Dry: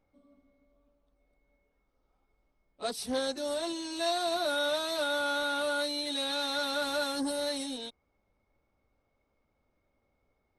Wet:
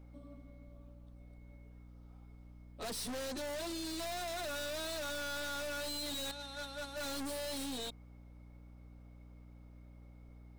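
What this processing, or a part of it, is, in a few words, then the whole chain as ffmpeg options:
valve amplifier with mains hum: -filter_complex "[0:a]asettb=1/sr,asplit=3[link_01][link_02][link_03];[link_01]atrim=end=6.314[link_04];[link_02]atrim=start=6.31:end=6.97,asetpts=PTS-STARTPTS,afade=type=in:duration=0.004:curve=qsin,afade=type=out:start_time=0.656:duration=0.004:curve=qsin,agate=range=-22dB:threshold=-28dB:ratio=16:detection=peak[link_05];[link_03]atrim=start=6.966[link_06];[link_04][link_05]acrossfade=duration=0.004:curve1=hsin:curve2=qsin[link_07];[link_07][link_06]acrossfade=duration=0.004:curve1=qsin:curve2=hsin,aeval=exprs='(tanh(251*val(0)+0.25)-tanh(0.25))/251':channel_layout=same,aeval=exprs='val(0)+0.000794*(sin(2*PI*60*n/s)+sin(2*PI*2*60*n/s)/2+sin(2*PI*3*60*n/s)/3+sin(2*PI*4*60*n/s)/4+sin(2*PI*5*60*n/s)/5)':channel_layout=same,volume=8.5dB"

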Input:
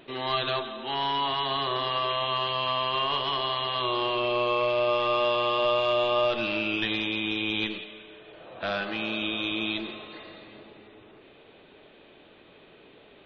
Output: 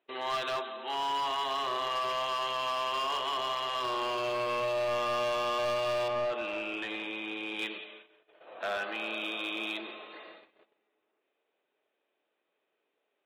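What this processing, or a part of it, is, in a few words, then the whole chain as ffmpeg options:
walkie-talkie: -filter_complex "[0:a]highpass=450,lowpass=2900,asoftclip=type=hard:threshold=-26dB,agate=range=-23dB:threshold=-48dB:ratio=16:detection=peak,asettb=1/sr,asplit=3[link_01][link_02][link_03];[link_01]atrim=end=6.084[link_04];[link_02]atrim=start=6.08:end=7.59,asetpts=PTS-STARTPTS,afade=type=in:duration=0.004:curve=qsin,afade=type=out:start_time=1.506:duration=0.004:curve=qsin,aemphasis=mode=reproduction:type=75kf[link_05];[link_03]atrim=start=7.586[link_06];[link_04][link_05]acrossfade=duration=0.004:curve1=hsin:curve2=qsin[link_07];[link_07][link_06]acrossfade=duration=0.004:curve1=qsin:curve2=hsin,volume=-1.5dB"

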